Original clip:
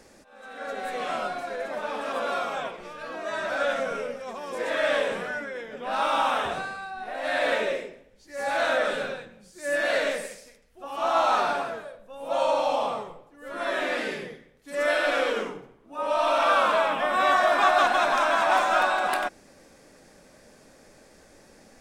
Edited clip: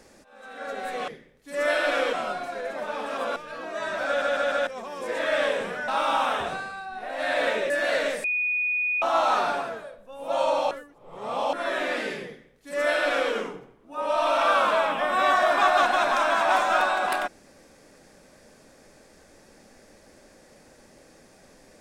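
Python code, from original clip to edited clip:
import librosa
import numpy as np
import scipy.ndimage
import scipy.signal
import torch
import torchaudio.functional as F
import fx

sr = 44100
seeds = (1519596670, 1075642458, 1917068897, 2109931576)

y = fx.edit(x, sr, fx.cut(start_s=2.31, length_s=0.56),
    fx.stutter_over(start_s=3.58, slice_s=0.15, count=4),
    fx.cut(start_s=5.39, length_s=0.54),
    fx.cut(start_s=7.75, length_s=1.96),
    fx.bleep(start_s=10.25, length_s=0.78, hz=2470.0, db=-22.5),
    fx.reverse_span(start_s=12.72, length_s=0.82),
    fx.duplicate(start_s=14.28, length_s=1.05, to_s=1.08), tone=tone)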